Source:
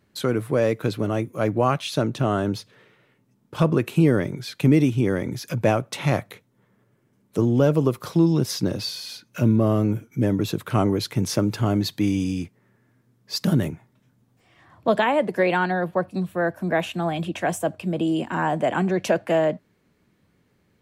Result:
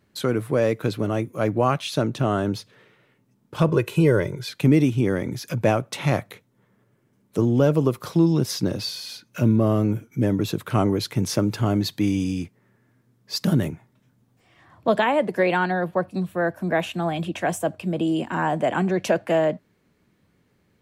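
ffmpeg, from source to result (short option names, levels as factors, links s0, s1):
-filter_complex "[0:a]asettb=1/sr,asplit=3[s0][s1][s2];[s0]atrim=end=3.684[s3];[s1]atrim=start=3.68:end=4.49,asetpts=PTS-STARTPTS,afade=t=in:d=0.004:c=qsin,afade=t=out:st=0.806:d=0.004:c=qsin,aecho=1:1:2:0.65,atrim=end_sample=35721[s4];[s2]atrim=start=4.486[s5];[s3][s4]acrossfade=d=0.004:c1=hsin:c2=qsin[s6];[s6][s5]acrossfade=d=0.004:c1=qsin:c2=hsin"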